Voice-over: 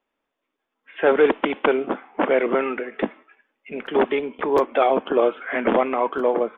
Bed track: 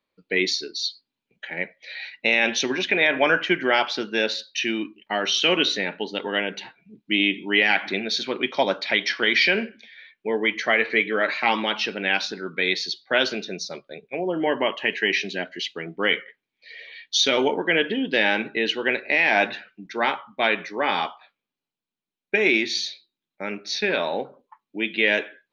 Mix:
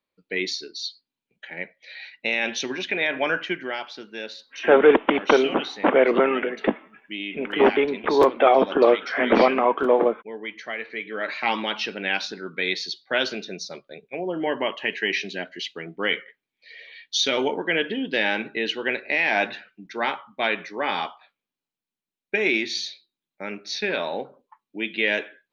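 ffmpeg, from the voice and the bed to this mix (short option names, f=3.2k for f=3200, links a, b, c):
-filter_complex "[0:a]adelay=3650,volume=2dB[a];[1:a]volume=4.5dB,afade=t=out:st=3.39:d=0.4:silence=0.446684,afade=t=in:st=11:d=0.48:silence=0.354813[b];[a][b]amix=inputs=2:normalize=0"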